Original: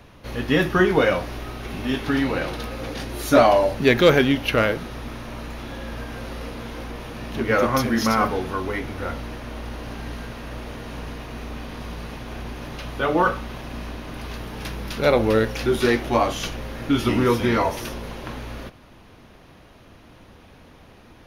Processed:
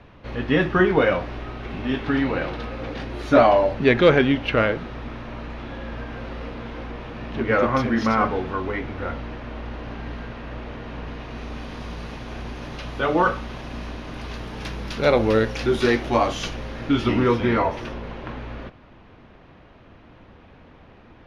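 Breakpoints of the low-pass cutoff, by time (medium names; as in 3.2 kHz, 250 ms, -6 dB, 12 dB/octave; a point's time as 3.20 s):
11.02 s 3.1 kHz
11.60 s 6.7 kHz
16.50 s 6.7 kHz
17.57 s 2.8 kHz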